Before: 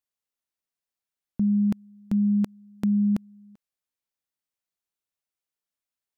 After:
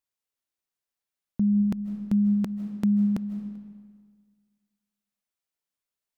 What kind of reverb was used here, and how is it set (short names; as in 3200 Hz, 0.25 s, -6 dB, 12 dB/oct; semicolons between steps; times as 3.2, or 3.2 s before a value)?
digital reverb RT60 1.7 s, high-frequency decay 0.8×, pre-delay 0.115 s, DRR 10 dB